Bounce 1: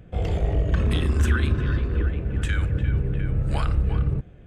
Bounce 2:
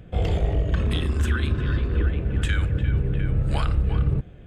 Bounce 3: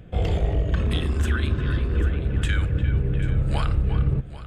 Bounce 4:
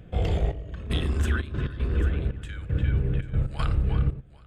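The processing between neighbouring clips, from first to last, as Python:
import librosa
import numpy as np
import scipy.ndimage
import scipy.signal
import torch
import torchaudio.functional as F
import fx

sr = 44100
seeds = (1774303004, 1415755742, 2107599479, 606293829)

y1 = fx.peak_eq(x, sr, hz=3400.0, db=3.5, octaves=0.58)
y1 = fx.notch(y1, sr, hz=5900.0, q=19.0)
y1 = fx.rider(y1, sr, range_db=10, speed_s=0.5)
y2 = y1 + 10.0 ** (-16.0 / 20.0) * np.pad(y1, (int(790 * sr / 1000.0), 0))[:len(y1)]
y3 = fx.step_gate(y2, sr, bpm=117, pattern='xxxx...xxxx.x.', floor_db=-12.0, edge_ms=4.5)
y3 = y3 * librosa.db_to_amplitude(-2.0)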